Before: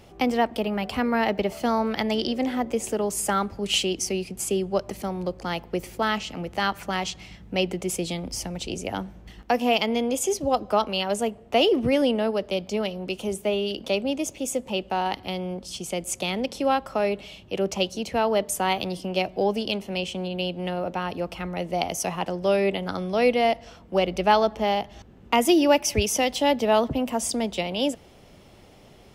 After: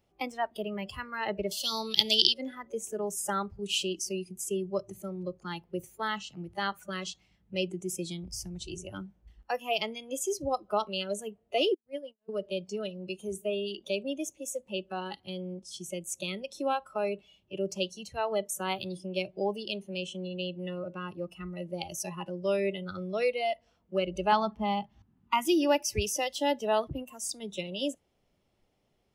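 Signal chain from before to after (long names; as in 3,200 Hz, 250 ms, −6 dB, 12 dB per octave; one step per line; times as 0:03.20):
0:01.51–0:02.34: high shelf with overshoot 2,500 Hz +12.5 dB, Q 3
0:11.74–0:12.29: noise gate −18 dBFS, range −47 dB
noise reduction from a noise print of the clip's start 17 dB
0:24.32–0:25.47: octave-band graphic EQ 125/250/500/1,000/8,000 Hz +8/+9/−12/+7/−5 dB
level −6.5 dB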